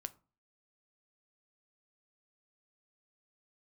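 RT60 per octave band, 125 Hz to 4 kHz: 0.45, 0.45, 0.35, 0.40, 0.25, 0.20 seconds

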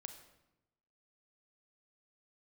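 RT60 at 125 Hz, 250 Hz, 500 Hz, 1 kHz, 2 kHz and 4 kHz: 1.2, 1.1, 0.95, 0.90, 0.80, 0.70 seconds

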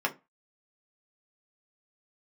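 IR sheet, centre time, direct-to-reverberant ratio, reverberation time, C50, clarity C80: 8 ms, 0.0 dB, 0.25 s, 18.5 dB, 27.0 dB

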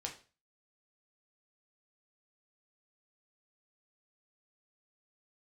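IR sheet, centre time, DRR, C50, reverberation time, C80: 17 ms, 0.5 dB, 10.5 dB, 0.35 s, 15.5 dB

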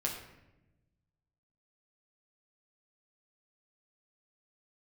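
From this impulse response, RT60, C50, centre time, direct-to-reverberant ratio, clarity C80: 0.95 s, 5.5 dB, 34 ms, −2.5 dB, 7.5 dB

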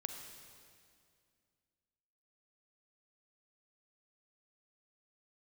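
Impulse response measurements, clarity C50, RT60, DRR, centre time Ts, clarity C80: 5.0 dB, 2.2 s, 4.5 dB, 48 ms, 6.0 dB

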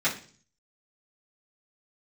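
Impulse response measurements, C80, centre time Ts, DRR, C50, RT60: 15.5 dB, 18 ms, −10.0 dB, 10.5 dB, 0.45 s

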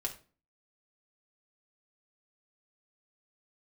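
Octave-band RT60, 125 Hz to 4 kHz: 0.45, 0.50, 0.40, 0.35, 0.30, 0.30 seconds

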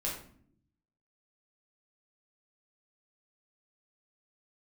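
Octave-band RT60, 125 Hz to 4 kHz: 1.2, 1.0, 0.65, 0.50, 0.45, 0.40 seconds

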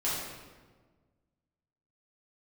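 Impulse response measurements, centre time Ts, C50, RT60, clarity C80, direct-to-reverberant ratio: 87 ms, −1.0 dB, 1.4 s, 2.0 dB, −9.5 dB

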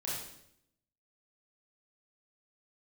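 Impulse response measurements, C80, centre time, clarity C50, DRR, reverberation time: 4.0 dB, 64 ms, 0.0 dB, −7.5 dB, 0.75 s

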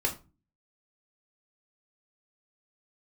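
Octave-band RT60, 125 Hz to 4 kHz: 0.55, 0.50, 0.30, 0.30, 0.25, 0.20 seconds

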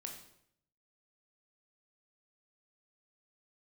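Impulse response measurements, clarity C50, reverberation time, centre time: 6.0 dB, 0.70 s, 27 ms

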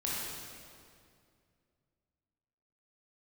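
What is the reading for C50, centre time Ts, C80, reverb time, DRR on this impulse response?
−3.0 dB, 138 ms, −1.0 dB, 2.3 s, −7.0 dB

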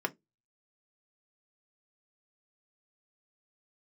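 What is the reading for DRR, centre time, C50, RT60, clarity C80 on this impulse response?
4.0 dB, 4 ms, 26.5 dB, 0.20 s, 37.5 dB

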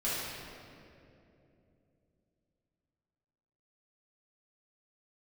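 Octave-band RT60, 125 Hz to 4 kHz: 4.0, 3.8, 3.4, 2.3, 2.1, 1.6 seconds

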